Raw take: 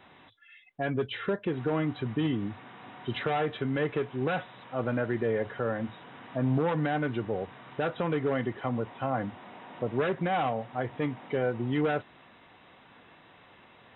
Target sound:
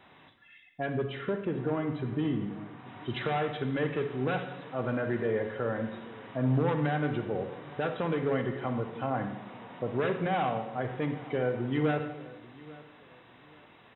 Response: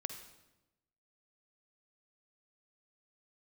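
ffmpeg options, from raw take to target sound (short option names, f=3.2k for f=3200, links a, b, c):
-filter_complex "[0:a]asettb=1/sr,asplit=3[a][b][c];[a]atrim=end=0.864[d];[b]atrim=start=0.86:end=2.86,asetpts=PTS-STARTPTS,afade=t=in:d=0.004:c=qsin,afade=t=out:st=1.996:d=0.004:c=qsin,highshelf=f=2.4k:g=-9[e];[c]atrim=start=2.856[f];[d][e]acrossfade=d=0.004:c1=hsin:c2=qsin[g];[g][f]acrossfade=d=0.004:c1=qsin:c2=hsin,aecho=1:1:839|1678:0.0944|0.0283[h];[1:a]atrim=start_sample=2205[i];[h][i]afir=irnorm=-1:irlink=0"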